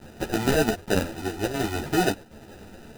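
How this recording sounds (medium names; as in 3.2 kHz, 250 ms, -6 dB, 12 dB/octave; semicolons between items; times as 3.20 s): a quantiser's noise floor 8-bit, dither triangular; chopped level 1.3 Hz, depth 60%, duty 90%; aliases and images of a low sample rate 1.1 kHz, jitter 0%; a shimmering, thickened sound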